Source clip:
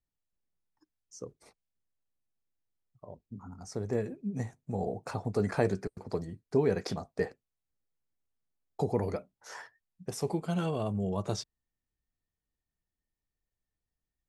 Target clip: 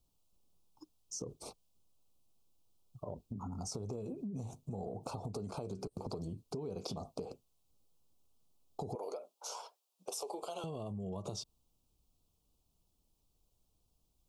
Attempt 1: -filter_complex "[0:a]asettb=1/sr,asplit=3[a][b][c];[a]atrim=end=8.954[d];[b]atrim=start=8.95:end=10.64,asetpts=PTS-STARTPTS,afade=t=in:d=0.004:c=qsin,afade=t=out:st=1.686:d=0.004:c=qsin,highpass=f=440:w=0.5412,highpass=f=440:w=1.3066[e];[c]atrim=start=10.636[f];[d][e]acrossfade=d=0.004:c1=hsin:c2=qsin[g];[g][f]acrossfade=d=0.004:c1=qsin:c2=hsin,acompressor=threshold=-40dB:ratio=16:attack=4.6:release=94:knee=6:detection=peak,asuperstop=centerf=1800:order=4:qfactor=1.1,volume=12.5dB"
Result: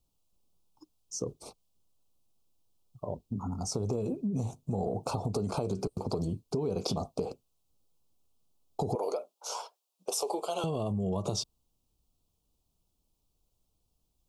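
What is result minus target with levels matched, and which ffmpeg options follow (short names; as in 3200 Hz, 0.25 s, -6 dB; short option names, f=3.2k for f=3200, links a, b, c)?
compressor: peak gain reduction -10 dB
-filter_complex "[0:a]asettb=1/sr,asplit=3[a][b][c];[a]atrim=end=8.954[d];[b]atrim=start=8.95:end=10.64,asetpts=PTS-STARTPTS,afade=t=in:d=0.004:c=qsin,afade=t=out:st=1.686:d=0.004:c=qsin,highpass=f=440:w=0.5412,highpass=f=440:w=1.3066[e];[c]atrim=start=10.636[f];[d][e]acrossfade=d=0.004:c1=hsin:c2=qsin[g];[g][f]acrossfade=d=0.004:c1=qsin:c2=hsin,acompressor=threshold=-50.5dB:ratio=16:attack=4.6:release=94:knee=6:detection=peak,asuperstop=centerf=1800:order=4:qfactor=1.1,volume=12.5dB"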